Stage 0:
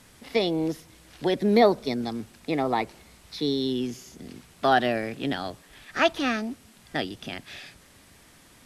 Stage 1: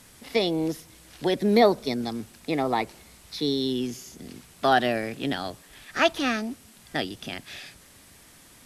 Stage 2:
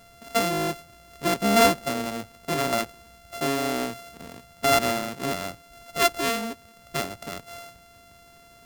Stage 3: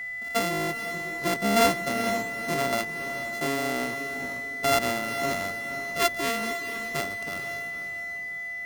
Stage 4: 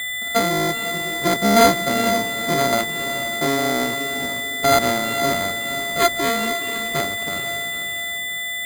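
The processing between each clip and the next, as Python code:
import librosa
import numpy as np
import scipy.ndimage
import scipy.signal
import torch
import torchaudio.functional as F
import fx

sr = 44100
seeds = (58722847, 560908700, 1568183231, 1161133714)

y1 = fx.high_shelf(x, sr, hz=5900.0, db=6.5)
y2 = np.r_[np.sort(y1[:len(y1) // 64 * 64].reshape(-1, 64), axis=1).ravel(), y1[len(y1) // 64 * 64:]]
y3 = fx.echo_diffused(y2, sr, ms=474, feedback_pct=41, wet_db=-9)
y3 = y3 + 10.0 ** (-29.0 / 20.0) * np.sin(2.0 * np.pi * 2000.0 * np.arange(len(y3)) / sr)
y3 = y3 * 10.0 ** (-3.0 / 20.0)
y4 = np.repeat(scipy.signal.resample_poly(y3, 1, 8), 8)[:len(y3)]
y4 = y4 * 10.0 ** (8.0 / 20.0)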